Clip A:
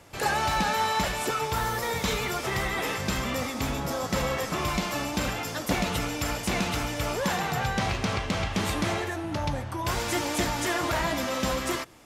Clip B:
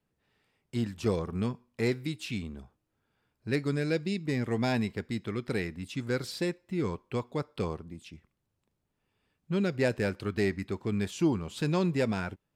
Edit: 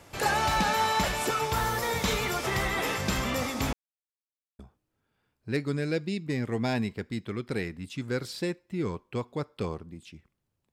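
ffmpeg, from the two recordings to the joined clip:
ffmpeg -i cue0.wav -i cue1.wav -filter_complex "[0:a]apad=whole_dur=10.72,atrim=end=10.72,asplit=2[link_01][link_02];[link_01]atrim=end=3.73,asetpts=PTS-STARTPTS,afade=type=out:start_time=3.726:duration=0.004:curve=hsin[link_03];[link_02]atrim=start=3.73:end=4.59,asetpts=PTS-STARTPTS,volume=0[link_04];[1:a]atrim=start=2.58:end=8.71,asetpts=PTS-STARTPTS,afade=type=in:duration=0.004:curve=hsin[link_05];[link_03][link_04][link_05]concat=n=3:v=0:a=1" out.wav

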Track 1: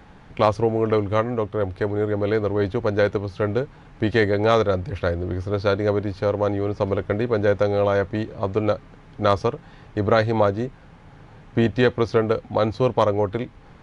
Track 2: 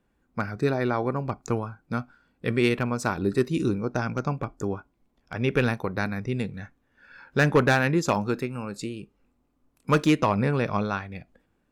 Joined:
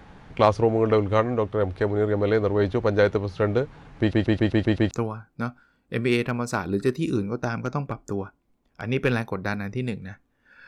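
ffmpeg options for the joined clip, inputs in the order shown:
ffmpeg -i cue0.wav -i cue1.wav -filter_complex "[0:a]apad=whole_dur=10.67,atrim=end=10.67,asplit=7[link_01][link_02][link_03][link_04][link_05][link_06][link_07];[link_01]atrim=end=4.132[link_08];[link_02]atrim=start=3.998:end=4.132[link_09];[link_03]atrim=start=3.998:end=4.132[link_10];[link_04]atrim=start=3.998:end=4.132[link_11];[link_05]atrim=start=3.998:end=4.132[link_12];[link_06]atrim=start=3.998:end=4.132[link_13];[link_07]atrim=start=3.998:end=4.132[link_14];[1:a]atrim=start=1.428:end=7.19[link_15];[link_08][link_09]acrossfade=duration=0.004:curve1=hsin:curve2=hsin[link_16];[link_16][link_10]acrossfade=duration=0.004:curve1=hsin:curve2=hsin[link_17];[link_17][link_11]acrossfade=duration=0.004:curve1=hsin:curve2=hsin[link_18];[link_18][link_12]acrossfade=duration=0.004:curve1=hsin:curve2=hsin[link_19];[link_19][link_13]acrossfade=duration=0.004:curve1=hsin:curve2=hsin[link_20];[link_20][link_14]acrossfade=duration=0.004:curve1=hsin:curve2=hsin[link_21];[link_21][link_15]acrossfade=duration=0.004:curve1=hsin:curve2=hsin" out.wav

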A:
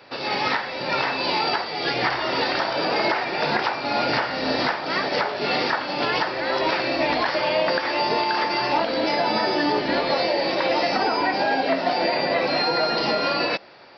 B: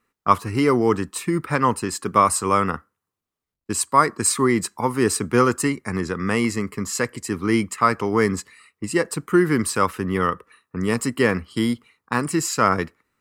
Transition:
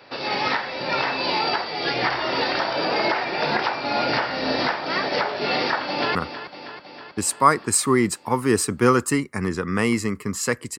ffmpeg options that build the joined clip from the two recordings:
ffmpeg -i cue0.wav -i cue1.wav -filter_complex "[0:a]apad=whole_dur=10.78,atrim=end=10.78,atrim=end=6.152[link_01];[1:a]atrim=start=2.668:end=7.3[link_02];[link_01][link_02]acrossfade=duration=0.004:curve1=hsin:curve2=hsin,asplit=2[link_03][link_04];[link_04]afade=type=in:start_time=5.56:duration=0.01,afade=type=out:start_time=6.15:duration=0.01,aecho=0:1:320|640|960|1280|1600|1920|2240|2560|2880:0.237137|0.165996|0.116197|0.0813381|0.0569367|0.0398557|0.027899|0.0195293|0.0136705[link_05];[link_03][link_05]amix=inputs=2:normalize=0" out.wav

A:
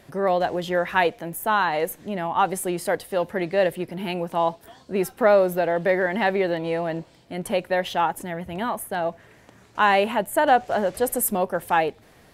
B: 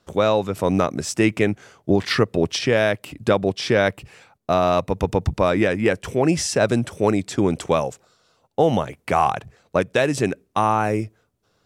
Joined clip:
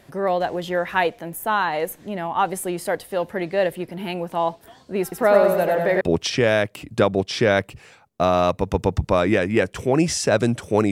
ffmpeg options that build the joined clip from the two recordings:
ffmpeg -i cue0.wav -i cue1.wav -filter_complex "[0:a]asettb=1/sr,asplit=3[link_01][link_02][link_03];[link_01]atrim=end=5.024[link_04];[link_02]atrim=start=5.02:end=6.01,asetpts=PTS-STARTPTS,afade=type=in:duration=0.004:curve=qsin,afade=type=out:start_time=0.986:duration=0.004:curve=qsin,aecho=1:1:98|196|294|392|490|588:0.668|0.314|0.148|0.0694|0.0326|0.0153,atrim=end_sample=43659[link_05];[link_03]atrim=start=6.006[link_06];[link_04][link_05]acrossfade=duration=0.004:curve1=hsin:curve2=qsin[link_07];[link_07][link_06]acrossfade=duration=0.004:curve1=qsin:curve2=hsin,apad=whole_dur=10.91,atrim=end=10.91,atrim=end=6.012[link_08];[1:a]atrim=start=2.298:end=7.2[link_09];[link_08][link_09]acrossfade=duration=0.004:curve1=hsin:curve2=hsin" out.wav

